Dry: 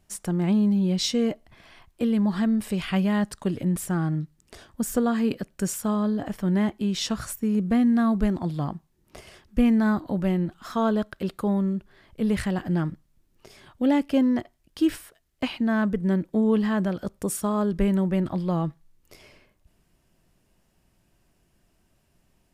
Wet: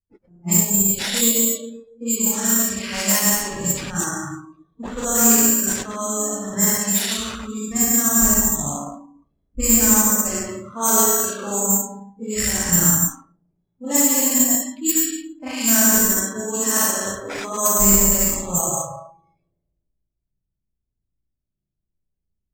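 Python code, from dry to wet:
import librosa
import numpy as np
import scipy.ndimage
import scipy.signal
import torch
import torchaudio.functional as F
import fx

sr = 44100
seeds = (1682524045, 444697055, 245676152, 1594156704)

y = fx.reverse_delay(x, sr, ms=101, wet_db=-1)
y = fx.rev_spring(y, sr, rt60_s=1.5, pass_ms=(35, 56), chirp_ms=65, drr_db=-6.0)
y = fx.rider(y, sr, range_db=4, speed_s=2.0)
y = fx.peak_eq(y, sr, hz=270.0, db=-9.5, octaves=3.0)
y = fx.notch(y, sr, hz=4100.0, q=8.0)
y = y + 10.0 ** (-15.5 / 20.0) * np.pad(y, (int(97 * sr / 1000.0), 0))[:len(y)]
y = fx.noise_reduce_blind(y, sr, reduce_db=23)
y = (np.kron(y[::6], np.eye(6)[0]) * 6)[:len(y)]
y = fx.env_lowpass(y, sr, base_hz=300.0, full_db=-10.5)
y = fx.high_shelf(y, sr, hz=11000.0, db=4.0, at=(14.89, 17.68))
y = fx.slew_limit(y, sr, full_power_hz=3200.0)
y = F.gain(torch.from_numpy(y), -1.0).numpy()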